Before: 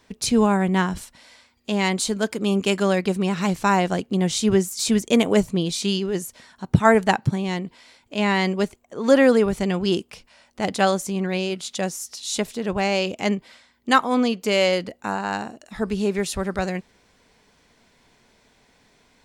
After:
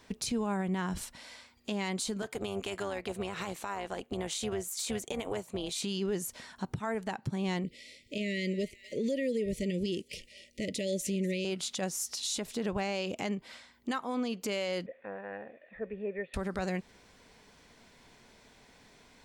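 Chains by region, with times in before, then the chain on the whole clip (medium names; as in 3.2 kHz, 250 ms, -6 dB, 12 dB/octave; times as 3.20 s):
2.22–5.84 s: high-pass 350 Hz + peaking EQ 5.2 kHz -6 dB 0.45 oct + AM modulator 300 Hz, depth 45%
7.64–11.45 s: Chebyshev band-stop 610–1900 Hz, order 5 + feedback echo behind a high-pass 245 ms, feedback 44%, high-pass 1.6 kHz, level -19 dB
14.86–16.34 s: zero-crossing glitches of -25.5 dBFS + cascade formant filter e + band-stop 880 Hz, Q 15
whole clip: compression 6:1, threshold -28 dBFS; peak limiter -24.5 dBFS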